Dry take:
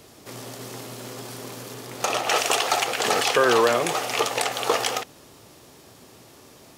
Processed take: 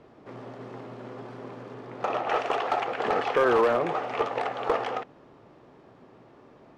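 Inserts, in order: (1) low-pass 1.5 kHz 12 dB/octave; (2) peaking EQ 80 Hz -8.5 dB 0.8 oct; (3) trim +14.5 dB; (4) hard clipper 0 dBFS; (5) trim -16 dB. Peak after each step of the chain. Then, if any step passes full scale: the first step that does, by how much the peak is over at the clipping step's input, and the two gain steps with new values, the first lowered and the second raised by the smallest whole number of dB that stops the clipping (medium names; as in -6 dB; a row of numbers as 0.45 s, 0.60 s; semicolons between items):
-8.0 dBFS, -8.0 dBFS, +6.5 dBFS, 0.0 dBFS, -16.0 dBFS; step 3, 6.5 dB; step 3 +7.5 dB, step 5 -9 dB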